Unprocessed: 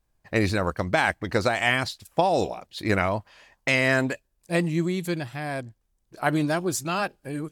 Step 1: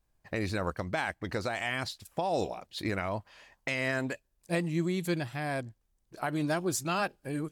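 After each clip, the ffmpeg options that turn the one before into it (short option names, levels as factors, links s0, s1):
-af "alimiter=limit=0.141:level=0:latency=1:release=342,volume=0.75"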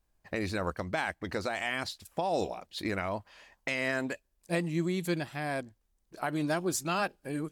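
-af "equalizer=f=120:w=5.5:g=-12"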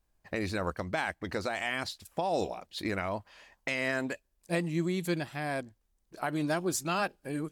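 -af anull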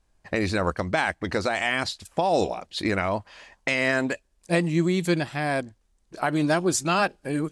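-af "lowpass=f=10000:w=0.5412,lowpass=f=10000:w=1.3066,volume=2.51"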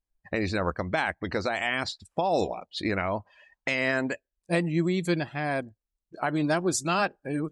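-af "afftdn=nr=20:nf=-42,volume=0.708"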